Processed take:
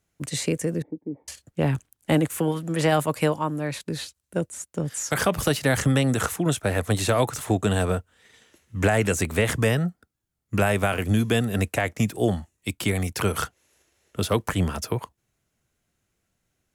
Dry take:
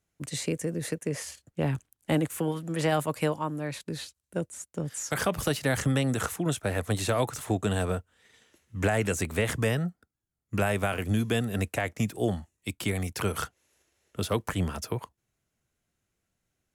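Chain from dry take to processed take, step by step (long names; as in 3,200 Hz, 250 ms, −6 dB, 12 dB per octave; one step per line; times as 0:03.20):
0:00.82–0:01.28: formant resonators in series u
level +5 dB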